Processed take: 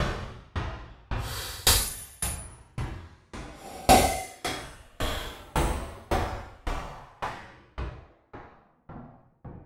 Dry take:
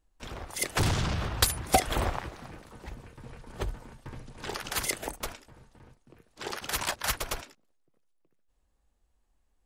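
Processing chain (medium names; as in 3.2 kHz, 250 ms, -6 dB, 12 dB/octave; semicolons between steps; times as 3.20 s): level-controlled noise filter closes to 340 Hz, open at -26 dBFS; Paulstretch 7.4×, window 0.10 s, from 1.22 s; sawtooth tremolo in dB decaying 1.8 Hz, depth 31 dB; trim +6.5 dB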